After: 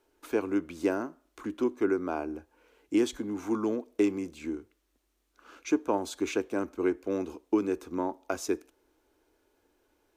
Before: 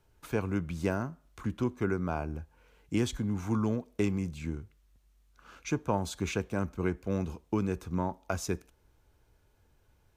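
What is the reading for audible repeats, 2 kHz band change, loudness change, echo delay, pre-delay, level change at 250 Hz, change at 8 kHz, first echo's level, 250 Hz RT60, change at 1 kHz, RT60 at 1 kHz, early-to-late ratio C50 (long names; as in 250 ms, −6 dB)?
no echo audible, 0.0 dB, +2.0 dB, no echo audible, no reverb audible, +2.5 dB, 0.0 dB, no echo audible, no reverb audible, +1.0 dB, no reverb audible, no reverb audible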